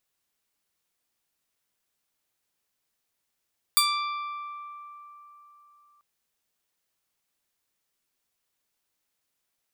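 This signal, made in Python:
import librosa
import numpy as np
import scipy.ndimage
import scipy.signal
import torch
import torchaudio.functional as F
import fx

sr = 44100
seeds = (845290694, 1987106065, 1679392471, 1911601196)

y = fx.pluck(sr, length_s=2.24, note=86, decay_s=3.76, pick=0.39, brightness='bright')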